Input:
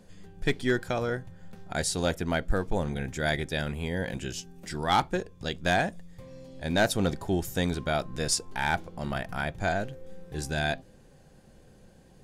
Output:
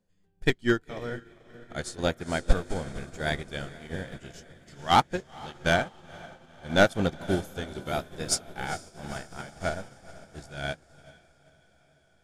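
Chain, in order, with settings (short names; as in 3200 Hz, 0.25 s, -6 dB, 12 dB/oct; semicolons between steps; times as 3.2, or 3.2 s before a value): trilling pitch shifter -1 st, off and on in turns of 0.495 s; diffused feedback echo 0.475 s, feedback 72%, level -8 dB; upward expander 2.5:1, over -39 dBFS; gain +7.5 dB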